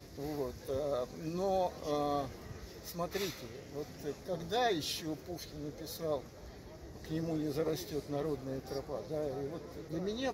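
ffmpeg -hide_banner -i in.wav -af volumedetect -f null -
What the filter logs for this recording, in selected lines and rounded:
mean_volume: -37.9 dB
max_volume: -20.9 dB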